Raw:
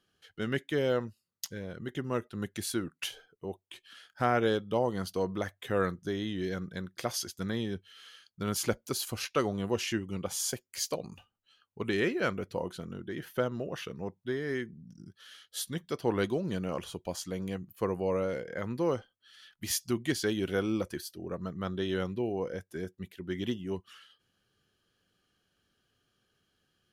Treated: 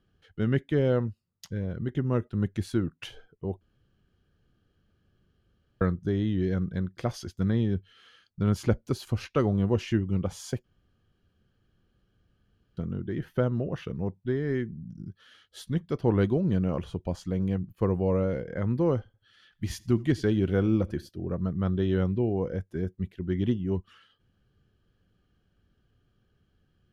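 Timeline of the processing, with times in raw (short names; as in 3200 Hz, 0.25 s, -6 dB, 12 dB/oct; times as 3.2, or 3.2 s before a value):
3.61–5.81 room tone
10.64–12.77 room tone
18.97–21.09 warbling echo 83 ms, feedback 41%, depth 51 cents, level -24 dB
whole clip: RIAA curve playback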